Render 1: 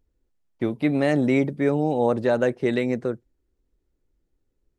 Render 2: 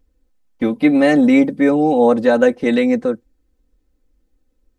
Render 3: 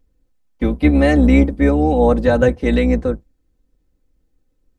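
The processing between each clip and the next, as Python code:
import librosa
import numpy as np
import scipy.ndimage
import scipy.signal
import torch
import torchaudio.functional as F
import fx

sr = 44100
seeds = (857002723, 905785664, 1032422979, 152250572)

y1 = x + 0.88 * np.pad(x, (int(3.9 * sr / 1000.0), 0))[:len(x)]
y1 = F.gain(torch.from_numpy(y1), 5.0).numpy()
y2 = fx.octave_divider(y1, sr, octaves=2, level_db=0.0)
y2 = F.gain(torch.from_numpy(y2), -1.5).numpy()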